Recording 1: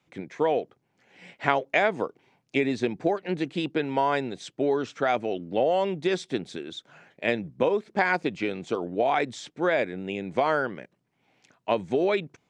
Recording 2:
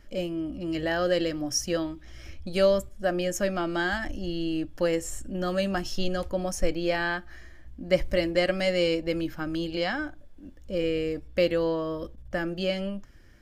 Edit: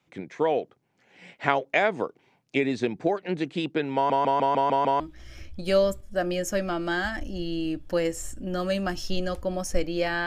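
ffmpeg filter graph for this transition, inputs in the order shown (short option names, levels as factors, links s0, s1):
-filter_complex "[0:a]apad=whole_dur=10.26,atrim=end=10.26,asplit=7[s0][s1][s2][s3][s4][s5][s6];[s0]atrim=end=4.102[s7];[s1]atrim=start=3.948:end=4.102[s8];[s2]atrim=start=3.948:end=4.102[s9];[s3]atrim=start=3.948:end=4.102[s10];[s4]atrim=start=3.948:end=4.102[s11];[s5]atrim=start=3.948:end=4.102[s12];[s6]atrim=start=3.948:end=4.102[s13];[1:a]atrim=start=1.878:end=7.14[s14];[s7][s8]acrossfade=d=0.004:c1=hsin:c2=hsin[s15];[s15][s9]acrossfade=d=0.004:c1=hsin:c2=hsin[s16];[s16][s10]acrossfade=d=0.004:c1=hsin:c2=hsin[s17];[s17][s11]acrossfade=d=0.004:c1=hsin:c2=hsin[s18];[s18][s12]acrossfade=d=0.004:c1=hsin:c2=hsin[s19];[s19][s13]acrossfade=d=0.004:c1=hsin:c2=hsin[s20];[s20][s14]acrossfade=d=0.004:c1=hsin:c2=hsin"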